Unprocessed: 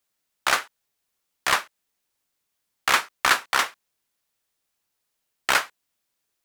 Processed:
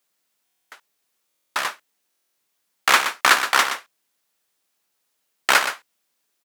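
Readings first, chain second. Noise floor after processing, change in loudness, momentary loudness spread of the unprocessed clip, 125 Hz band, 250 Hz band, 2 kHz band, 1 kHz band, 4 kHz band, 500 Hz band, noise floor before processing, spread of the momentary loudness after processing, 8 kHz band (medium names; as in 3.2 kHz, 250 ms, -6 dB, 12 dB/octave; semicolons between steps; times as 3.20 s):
-74 dBFS, +4.0 dB, 9 LU, no reading, +2.5 dB, +3.5 dB, +3.5 dB, +3.5 dB, +3.0 dB, -79 dBFS, 13 LU, +3.0 dB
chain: high-pass 170 Hz 12 dB/octave; in parallel at -10 dB: overload inside the chain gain 12.5 dB; on the sum: delay 122 ms -9.5 dB; buffer glitch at 0.44/1.28/2.09 s, samples 1024, times 11; trim +2 dB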